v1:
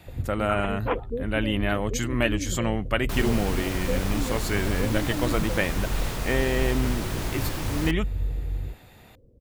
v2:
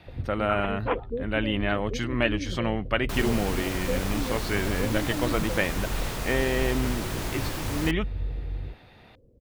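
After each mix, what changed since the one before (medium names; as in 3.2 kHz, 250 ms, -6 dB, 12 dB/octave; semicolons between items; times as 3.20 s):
speech: add Savitzky-Golay filter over 15 samples; master: add bass shelf 180 Hz -3.5 dB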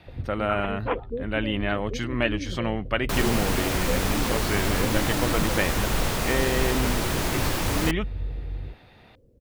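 second sound +6.5 dB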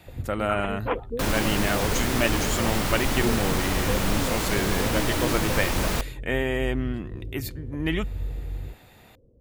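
speech: remove Savitzky-Golay filter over 15 samples; second sound: entry -1.90 s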